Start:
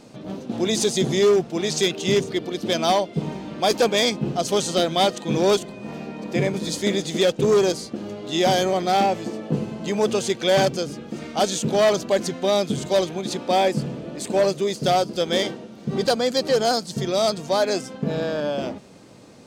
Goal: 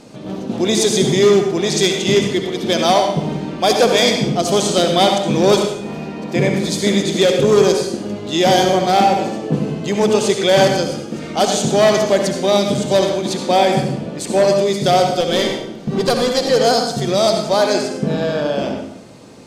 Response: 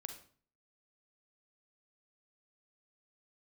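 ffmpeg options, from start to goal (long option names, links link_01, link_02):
-filter_complex "[0:a]asettb=1/sr,asplit=3[link_01][link_02][link_03];[link_01]atrim=end=15.204[link_04];[link_02]atrim=start=15.2:end=16.5,asetpts=PTS-STARTPTS,afade=type=in:duration=0.004:curve=qsin,afade=type=out:start_time=1.296:duration=0.004:curve=qsin,aeval=exprs='clip(val(0),-1,0.112)':channel_layout=same[link_05];[link_03]atrim=start=16.496[link_06];[link_04][link_05]acrossfade=duration=0.004:curve1=hsin:curve2=qsin[link_07];[link_07][link_06]acrossfade=duration=0.004:curve1=qsin:curve2=hsin[link_08];[1:a]atrim=start_sample=2205,asetrate=26460,aresample=44100[link_09];[link_08][link_09]afir=irnorm=-1:irlink=0,volume=7dB"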